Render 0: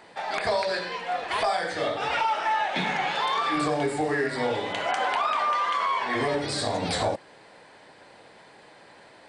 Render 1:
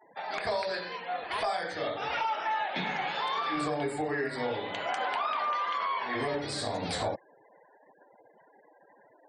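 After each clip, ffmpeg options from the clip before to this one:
-af "afftfilt=real='re*gte(hypot(re,im),0.00708)':imag='im*gte(hypot(re,im),0.00708)':win_size=1024:overlap=0.75,volume=-5.5dB"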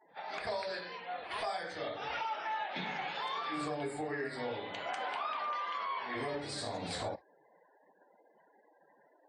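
-af "volume=-6dB" -ar 32000 -c:a libvorbis -b:a 32k

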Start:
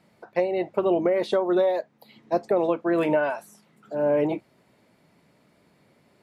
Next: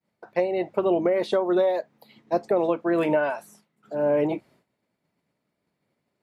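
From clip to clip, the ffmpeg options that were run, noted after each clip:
-af "agate=range=-33dB:threshold=-50dB:ratio=3:detection=peak"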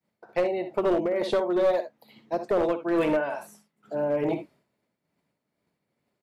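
-af "aecho=1:1:62|76:0.299|0.188,tremolo=f=2.3:d=0.45,aeval=exprs='clip(val(0),-1,0.106)':c=same"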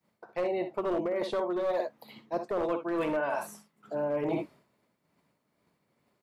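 -af "equalizer=f=1.1k:t=o:w=0.45:g=5,areverse,acompressor=threshold=-32dB:ratio=6,areverse,volume=4dB"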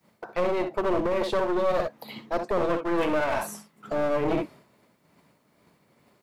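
-filter_complex "[0:a]asplit=2[a][b];[b]alimiter=level_in=7dB:limit=-24dB:level=0:latency=1:release=456,volume=-7dB,volume=1dB[c];[a][c]amix=inputs=2:normalize=0,aeval=exprs='clip(val(0),-1,0.02)':c=same,volume=4.5dB"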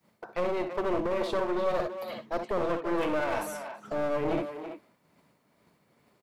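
-filter_complex "[0:a]asplit=2[a][b];[b]adelay=330,highpass=300,lowpass=3.4k,asoftclip=type=hard:threshold=-21.5dB,volume=-8dB[c];[a][c]amix=inputs=2:normalize=0,volume=-4dB"

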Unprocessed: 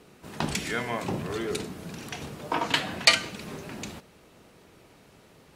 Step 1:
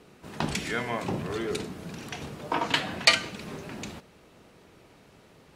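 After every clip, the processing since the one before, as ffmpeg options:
-af "highshelf=f=8.1k:g=-6"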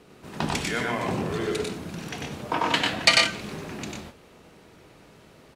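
-af "aecho=1:1:96|120:0.708|0.531,volume=1dB"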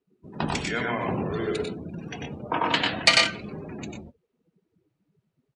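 -af "afftdn=nr=32:nf=-37"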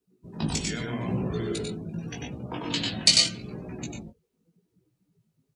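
-filter_complex "[0:a]acrossover=split=460|3000[a][b][c];[b]acompressor=threshold=-37dB:ratio=6[d];[a][d][c]amix=inputs=3:normalize=0,flanger=delay=16:depth=2.8:speed=0.82,bass=f=250:g=6,treble=f=4k:g=11"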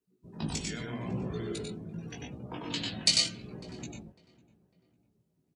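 -filter_complex "[0:a]asplit=2[a][b];[b]adelay=551,lowpass=f=1.7k:p=1,volume=-21dB,asplit=2[c][d];[d]adelay=551,lowpass=f=1.7k:p=1,volume=0.46,asplit=2[e][f];[f]adelay=551,lowpass=f=1.7k:p=1,volume=0.46[g];[a][c][e][g]amix=inputs=4:normalize=0,volume=-6dB"

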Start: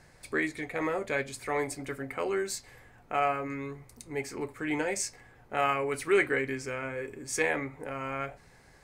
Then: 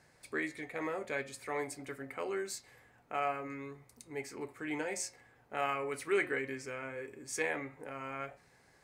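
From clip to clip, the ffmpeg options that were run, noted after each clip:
-af "highpass=f=140:p=1,bandreject=f=180:t=h:w=4,bandreject=f=360:t=h:w=4,bandreject=f=540:t=h:w=4,bandreject=f=720:t=h:w=4,bandreject=f=900:t=h:w=4,bandreject=f=1.08k:t=h:w=4,bandreject=f=1.26k:t=h:w=4,bandreject=f=1.44k:t=h:w=4,bandreject=f=1.62k:t=h:w=4,bandreject=f=1.8k:t=h:w=4,bandreject=f=1.98k:t=h:w=4,bandreject=f=2.16k:t=h:w=4,bandreject=f=2.34k:t=h:w=4,bandreject=f=2.52k:t=h:w=4,bandreject=f=2.7k:t=h:w=4,bandreject=f=2.88k:t=h:w=4,bandreject=f=3.06k:t=h:w=4,bandreject=f=3.24k:t=h:w=4,bandreject=f=3.42k:t=h:w=4,bandreject=f=3.6k:t=h:w=4,bandreject=f=3.78k:t=h:w=4,bandreject=f=3.96k:t=h:w=4,volume=-6dB"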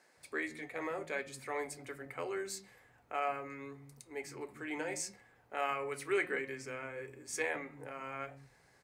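-filter_complex "[0:a]acrossover=split=230[a][b];[a]adelay=170[c];[c][b]amix=inputs=2:normalize=0,volume=-1dB"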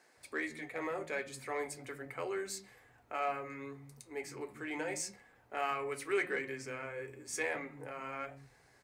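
-filter_complex "[0:a]flanger=delay=2.6:depth=7.3:regen=-68:speed=0.35:shape=sinusoidal,asplit=2[a][b];[b]asoftclip=type=tanh:threshold=-39dB,volume=-8dB[c];[a][c]amix=inputs=2:normalize=0,volume=2.5dB"

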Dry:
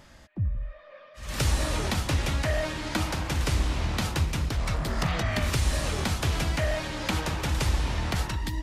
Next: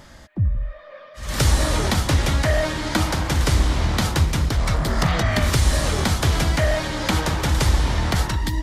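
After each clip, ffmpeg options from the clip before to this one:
-af "equalizer=f=2.6k:t=o:w=0.27:g=-5.5,volume=7.5dB"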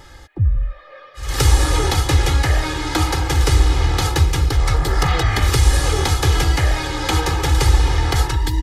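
-af "aecho=1:1:2.4:0.95"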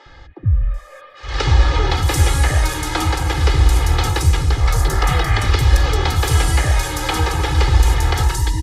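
-filter_complex "[0:a]acrossover=split=310|5200[a][b][c];[a]adelay=60[d];[c]adelay=740[e];[d][b][e]amix=inputs=3:normalize=0,volume=1dB"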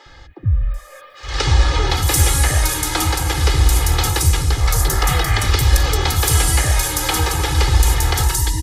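-af "aemphasis=mode=production:type=50kf,volume=-1dB"

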